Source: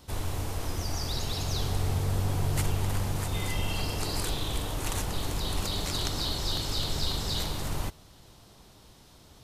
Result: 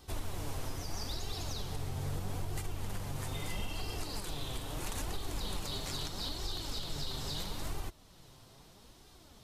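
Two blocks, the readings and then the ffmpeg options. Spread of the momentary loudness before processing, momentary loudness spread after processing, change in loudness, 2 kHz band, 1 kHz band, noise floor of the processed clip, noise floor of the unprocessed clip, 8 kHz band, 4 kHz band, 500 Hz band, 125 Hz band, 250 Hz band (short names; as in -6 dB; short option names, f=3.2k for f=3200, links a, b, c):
5 LU, 19 LU, -8.5 dB, -7.5 dB, -7.5 dB, -58 dBFS, -55 dBFS, -8.0 dB, -8.0 dB, -7.5 dB, -10.0 dB, -8.0 dB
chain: -af "flanger=delay=2.5:depth=5.3:regen=42:speed=0.77:shape=sinusoidal,alimiter=level_in=4dB:limit=-24dB:level=0:latency=1:release=424,volume=-4dB,volume=1dB"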